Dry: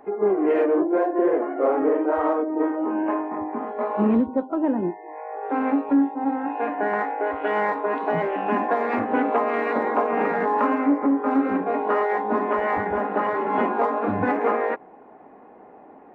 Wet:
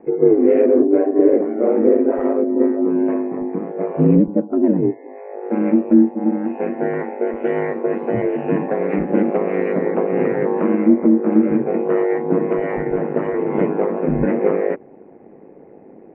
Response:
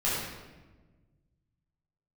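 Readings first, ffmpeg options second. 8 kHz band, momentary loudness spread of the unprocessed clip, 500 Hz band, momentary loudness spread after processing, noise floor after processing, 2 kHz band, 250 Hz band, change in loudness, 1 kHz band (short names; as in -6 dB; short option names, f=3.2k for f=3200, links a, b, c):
n/a, 6 LU, +6.0 dB, 9 LU, -44 dBFS, -3.5 dB, +7.0 dB, +5.0 dB, -6.5 dB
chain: -af "lowpass=f=2.3k:t=q:w=3,lowshelf=f=640:t=q:w=1.5:g=13.5,aeval=exprs='val(0)*sin(2*PI*50*n/s)':c=same,volume=-5.5dB"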